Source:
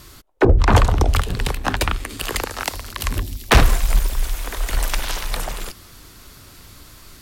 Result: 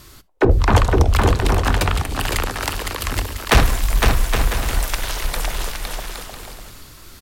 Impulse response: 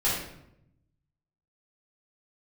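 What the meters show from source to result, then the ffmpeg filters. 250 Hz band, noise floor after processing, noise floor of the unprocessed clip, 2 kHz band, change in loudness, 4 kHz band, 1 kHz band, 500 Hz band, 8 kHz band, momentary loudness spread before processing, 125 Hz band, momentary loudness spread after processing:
+1.5 dB, -44 dBFS, -45 dBFS, +1.5 dB, +1.0 dB, +1.5 dB, +1.5 dB, +1.5 dB, +1.5 dB, 12 LU, +1.5 dB, 14 LU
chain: -filter_complex "[0:a]aecho=1:1:510|816|999.6|1110|1176:0.631|0.398|0.251|0.158|0.1,asplit=2[a][b];[1:a]atrim=start_sample=2205,atrim=end_sample=3528[c];[b][c]afir=irnorm=-1:irlink=0,volume=-28.5dB[d];[a][d]amix=inputs=2:normalize=0,volume=-1dB"

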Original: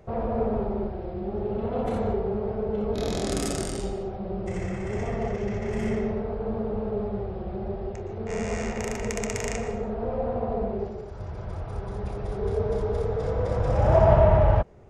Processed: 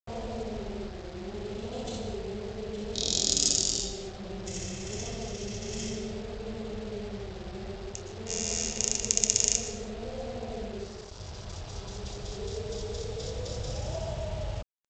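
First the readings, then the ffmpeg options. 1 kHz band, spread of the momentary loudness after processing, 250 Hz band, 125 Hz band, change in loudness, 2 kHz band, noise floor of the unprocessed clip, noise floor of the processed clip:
-13.5 dB, 16 LU, -8.5 dB, -11.0 dB, -4.5 dB, -6.0 dB, -36 dBFS, -43 dBFS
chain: -af "adynamicequalizer=threshold=0.00708:dfrequency=1100:dqfactor=1.1:tfrequency=1100:tqfactor=1.1:attack=5:release=100:ratio=0.375:range=3.5:mode=cutabove:tftype=bell,acompressor=threshold=-24dB:ratio=6,aexciter=amount=11.6:drive=4:freq=3k,aresample=16000,acrusher=bits=5:mix=0:aa=0.5,aresample=44100,volume=-7dB"

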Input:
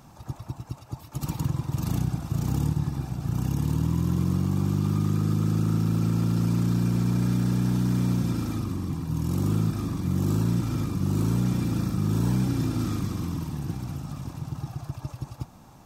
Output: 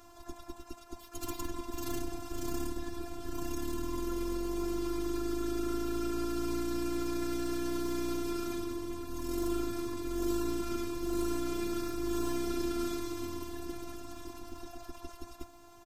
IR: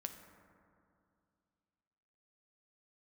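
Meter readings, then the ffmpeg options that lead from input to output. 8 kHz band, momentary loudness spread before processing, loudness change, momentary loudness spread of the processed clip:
-2.0 dB, 12 LU, -9.5 dB, 14 LU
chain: -af "aecho=1:1:5.2:0.64,afftfilt=real='hypot(re,im)*cos(PI*b)':imag='0':win_size=512:overlap=0.75"

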